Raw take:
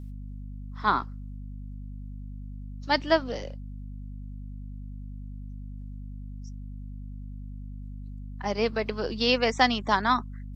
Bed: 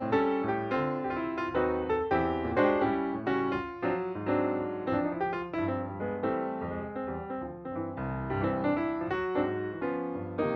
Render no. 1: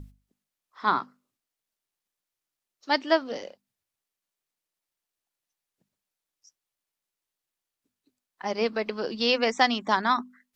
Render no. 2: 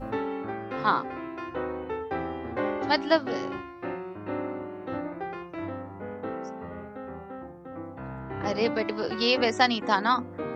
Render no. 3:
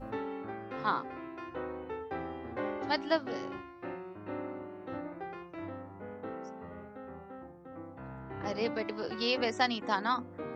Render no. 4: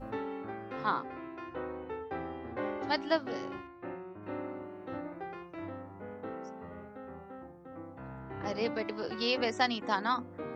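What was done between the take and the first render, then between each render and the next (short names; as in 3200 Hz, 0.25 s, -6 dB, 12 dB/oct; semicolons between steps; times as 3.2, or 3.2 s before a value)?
notches 50/100/150/200/250 Hz
add bed -4 dB
gain -7 dB
0.84–2.62 air absorption 53 m; 3.67–4.23 air absorption 300 m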